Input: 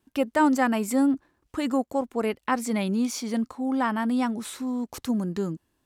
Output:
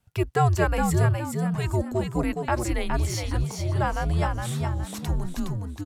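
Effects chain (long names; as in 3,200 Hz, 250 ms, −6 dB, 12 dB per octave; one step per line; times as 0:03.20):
echo with shifted repeats 415 ms, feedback 34%, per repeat +66 Hz, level −5 dB
frequency shifter −170 Hz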